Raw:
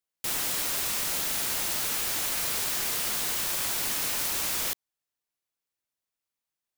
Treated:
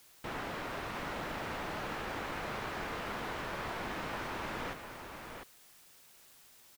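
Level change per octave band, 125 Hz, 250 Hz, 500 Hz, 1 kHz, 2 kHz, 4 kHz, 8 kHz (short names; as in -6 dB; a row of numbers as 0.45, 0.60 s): +1.5, +1.5, +1.5, +0.5, -4.5, -14.5, -25.5 dB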